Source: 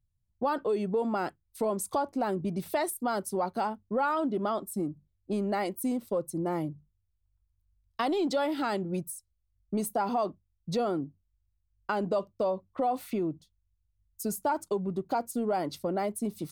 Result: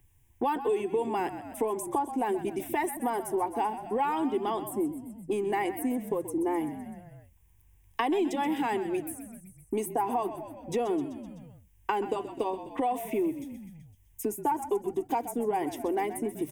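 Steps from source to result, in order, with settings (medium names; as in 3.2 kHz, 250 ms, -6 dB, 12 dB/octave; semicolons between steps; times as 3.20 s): static phaser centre 890 Hz, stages 8; on a send: frequency-shifting echo 127 ms, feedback 50%, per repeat -44 Hz, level -13 dB; on the sum: three bands compressed up and down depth 70%; trim +3.5 dB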